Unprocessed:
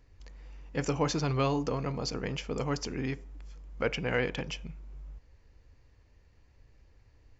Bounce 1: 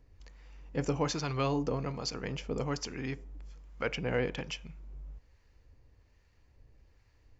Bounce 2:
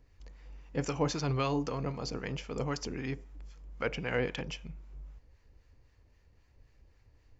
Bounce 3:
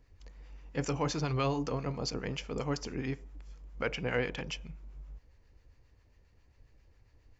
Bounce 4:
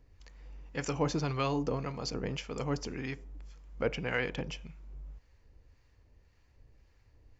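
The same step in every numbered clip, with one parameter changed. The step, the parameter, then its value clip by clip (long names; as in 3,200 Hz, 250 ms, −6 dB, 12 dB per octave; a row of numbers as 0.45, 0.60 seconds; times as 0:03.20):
two-band tremolo in antiphase, speed: 1.2, 3.8, 7.4, 1.8 Hertz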